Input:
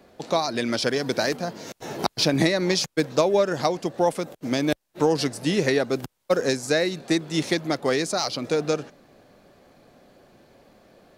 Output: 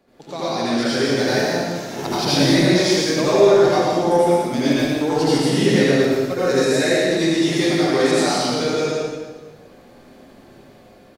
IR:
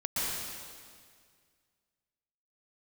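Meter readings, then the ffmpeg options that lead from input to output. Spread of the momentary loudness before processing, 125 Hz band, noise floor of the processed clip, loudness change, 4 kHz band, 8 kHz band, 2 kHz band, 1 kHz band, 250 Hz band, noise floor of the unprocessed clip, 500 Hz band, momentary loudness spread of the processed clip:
7 LU, +7.0 dB, -47 dBFS, +6.5 dB, +5.5 dB, +5.5 dB, +5.5 dB, +6.0 dB, +7.5 dB, -71 dBFS, +6.5 dB, 10 LU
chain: -filter_complex "[0:a]asplit=2[s0][s1];[s1]asoftclip=type=tanh:threshold=0.15,volume=0.355[s2];[s0][s2]amix=inputs=2:normalize=0,aecho=1:1:118|176:0.531|0.422,asoftclip=type=hard:threshold=0.447,dynaudnorm=f=240:g=7:m=1.88[s3];[1:a]atrim=start_sample=2205,asetrate=70560,aresample=44100[s4];[s3][s4]afir=irnorm=-1:irlink=0,volume=0.531"

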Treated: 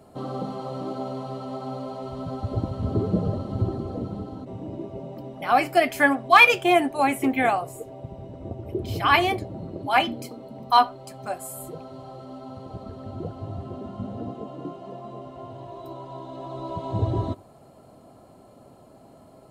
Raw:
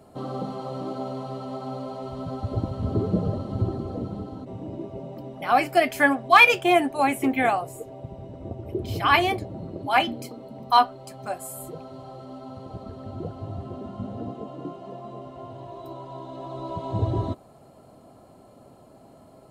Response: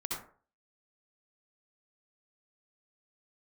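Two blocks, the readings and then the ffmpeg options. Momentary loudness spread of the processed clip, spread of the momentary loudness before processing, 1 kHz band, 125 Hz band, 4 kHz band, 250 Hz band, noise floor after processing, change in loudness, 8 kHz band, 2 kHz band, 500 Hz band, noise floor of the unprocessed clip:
19 LU, 19 LU, +0.5 dB, +0.5 dB, +0.5 dB, +0.5 dB, -51 dBFS, +0.5 dB, +0.5 dB, +0.5 dB, +0.5 dB, -52 dBFS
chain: -filter_complex "[0:a]asplit=2[s0][s1];[1:a]atrim=start_sample=2205,atrim=end_sample=4410[s2];[s1][s2]afir=irnorm=-1:irlink=0,volume=0.0531[s3];[s0][s3]amix=inputs=2:normalize=0"

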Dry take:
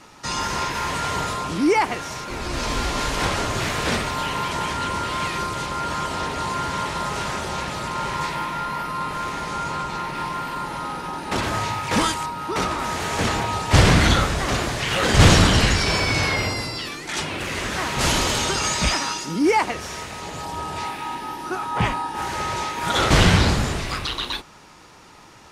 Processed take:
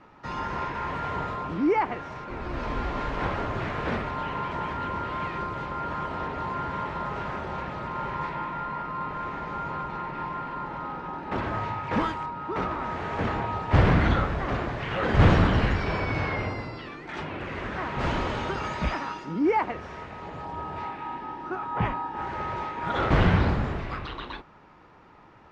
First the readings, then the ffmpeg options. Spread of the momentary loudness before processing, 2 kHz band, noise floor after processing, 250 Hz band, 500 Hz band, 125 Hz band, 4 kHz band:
12 LU, -8.0 dB, -52 dBFS, -4.5 dB, -4.5 dB, -4.5 dB, -16.5 dB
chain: -af "lowpass=1800,volume=0.596"

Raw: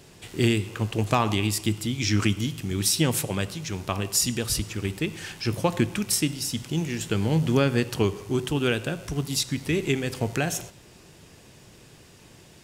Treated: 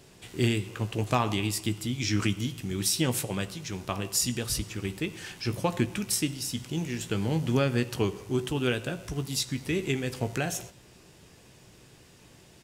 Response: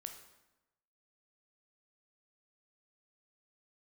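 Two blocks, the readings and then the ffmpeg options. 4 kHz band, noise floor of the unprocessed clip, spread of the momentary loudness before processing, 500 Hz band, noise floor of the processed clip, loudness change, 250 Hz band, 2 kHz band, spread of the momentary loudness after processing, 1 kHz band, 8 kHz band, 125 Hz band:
-3.5 dB, -51 dBFS, 8 LU, -4.0 dB, -55 dBFS, -4.0 dB, -4.0 dB, -3.5 dB, 8 LU, -3.5 dB, -3.5 dB, -4.0 dB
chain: -filter_complex "[0:a]asplit=2[s0][s1];[s1]adelay=16,volume=0.282[s2];[s0][s2]amix=inputs=2:normalize=0,volume=0.631"

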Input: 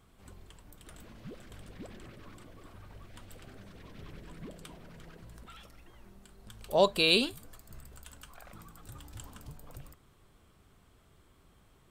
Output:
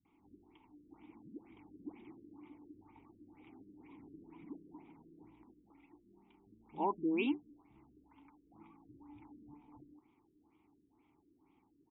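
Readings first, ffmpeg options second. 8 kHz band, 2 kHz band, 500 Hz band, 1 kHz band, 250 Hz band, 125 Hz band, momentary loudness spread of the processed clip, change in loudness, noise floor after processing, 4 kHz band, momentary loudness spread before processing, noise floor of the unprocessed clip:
under -30 dB, -13.0 dB, -12.5 dB, -4.5 dB, -0.5 dB, -14.0 dB, 24 LU, -13.5 dB, -73 dBFS, -24.5 dB, 9 LU, -63 dBFS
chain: -filter_complex "[0:a]asplit=3[s0][s1][s2];[s0]bandpass=f=300:t=q:w=8,volume=1[s3];[s1]bandpass=f=870:t=q:w=8,volume=0.501[s4];[s2]bandpass=f=2240:t=q:w=8,volume=0.355[s5];[s3][s4][s5]amix=inputs=3:normalize=0,acrossover=split=190[s6][s7];[s7]adelay=50[s8];[s6][s8]amix=inputs=2:normalize=0,afftfilt=real='re*lt(b*sr/1024,460*pow(3900/460,0.5+0.5*sin(2*PI*2.1*pts/sr)))':imag='im*lt(b*sr/1024,460*pow(3900/460,0.5+0.5*sin(2*PI*2.1*pts/sr)))':win_size=1024:overlap=0.75,volume=2.51"

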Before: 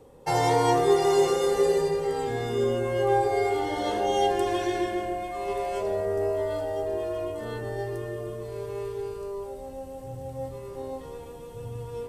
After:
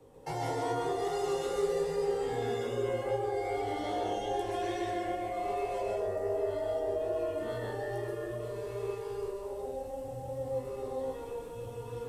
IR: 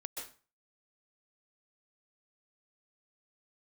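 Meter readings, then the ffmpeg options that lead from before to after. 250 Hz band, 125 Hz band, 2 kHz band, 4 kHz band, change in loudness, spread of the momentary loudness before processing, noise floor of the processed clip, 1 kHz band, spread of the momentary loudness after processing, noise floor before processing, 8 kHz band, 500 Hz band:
-7.5 dB, -7.0 dB, -7.5 dB, -9.0 dB, -7.5 dB, 16 LU, -42 dBFS, -8.0 dB, 7 LU, -41 dBFS, -9.5 dB, -6.5 dB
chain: -filter_complex "[0:a]acrossover=split=140|500[s0][s1][s2];[s0]acompressor=threshold=0.00631:ratio=4[s3];[s1]acompressor=threshold=0.0158:ratio=4[s4];[s2]acompressor=threshold=0.0178:ratio=4[s5];[s3][s4][s5]amix=inputs=3:normalize=0,flanger=delay=16.5:depth=7.5:speed=2.5[s6];[1:a]atrim=start_sample=2205[s7];[s6][s7]afir=irnorm=-1:irlink=0,volume=1.33"

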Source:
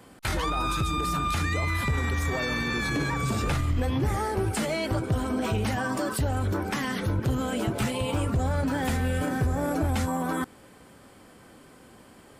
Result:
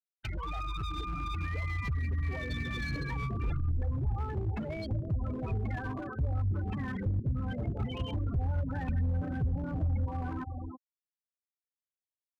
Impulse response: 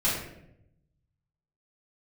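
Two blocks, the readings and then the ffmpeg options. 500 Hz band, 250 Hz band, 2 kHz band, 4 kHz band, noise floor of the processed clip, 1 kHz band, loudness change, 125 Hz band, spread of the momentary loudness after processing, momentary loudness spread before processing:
-12.5 dB, -9.5 dB, -11.0 dB, -12.5 dB, under -85 dBFS, -11.5 dB, -6.5 dB, -3.5 dB, 5 LU, 2 LU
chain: -filter_complex "[0:a]aphaser=in_gain=1:out_gain=1:delay=2.9:decay=0.34:speed=0.43:type=sinusoidal,asplit=2[s0][s1];[s1]adelay=322,lowpass=f=1700:p=1,volume=0.282,asplit=2[s2][s3];[s3]adelay=322,lowpass=f=1700:p=1,volume=0.48,asplit=2[s4][s5];[s5]adelay=322,lowpass=f=1700:p=1,volume=0.48,asplit=2[s6][s7];[s7]adelay=322,lowpass=f=1700:p=1,volume=0.48,asplit=2[s8][s9];[s9]adelay=322,lowpass=f=1700:p=1,volume=0.48[s10];[s0][s2][s4][s6][s8][s10]amix=inputs=6:normalize=0,acontrast=27,aresample=11025,aresample=44100,acrusher=bits=4:mix=0:aa=0.5,acompressor=threshold=0.0631:ratio=10,afftfilt=real='re*gte(hypot(re,im),0.0794)':imag='im*gte(hypot(re,im),0.0794)':win_size=1024:overlap=0.75,aemphasis=mode=production:type=50fm,crystalizer=i=1.5:c=0,volume=15.8,asoftclip=hard,volume=0.0631,asubboost=boost=2.5:cutoff=200,volume=0.376"

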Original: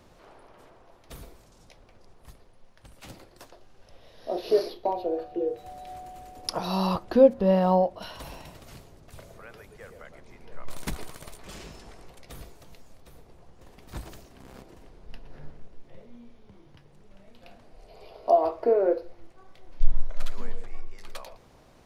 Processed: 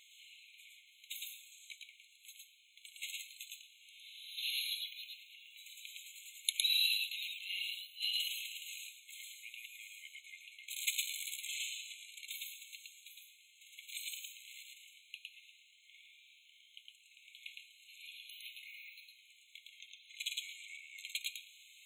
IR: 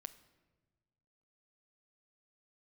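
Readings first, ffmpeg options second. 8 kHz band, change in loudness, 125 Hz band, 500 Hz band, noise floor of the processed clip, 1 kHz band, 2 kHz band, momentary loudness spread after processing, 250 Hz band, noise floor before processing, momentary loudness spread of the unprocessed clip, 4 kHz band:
+7.0 dB, -14.0 dB, under -40 dB, under -40 dB, -65 dBFS, under -40 dB, +4.0 dB, 21 LU, under -40 dB, -56 dBFS, 23 LU, +7.5 dB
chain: -filter_complex "[0:a]flanger=delay=0.6:depth=1.7:regen=64:speed=0.12:shape=triangular,asplit=2[s0][s1];[s1]asuperstop=centerf=1900:order=4:qfactor=2.5[s2];[1:a]atrim=start_sample=2205,adelay=110[s3];[s2][s3]afir=irnorm=-1:irlink=0,volume=1.68[s4];[s0][s4]amix=inputs=2:normalize=0,afftfilt=real='re*eq(mod(floor(b*sr/1024/2100),2),1)':imag='im*eq(mod(floor(b*sr/1024/2100),2),1)':win_size=1024:overlap=0.75,volume=3.98"

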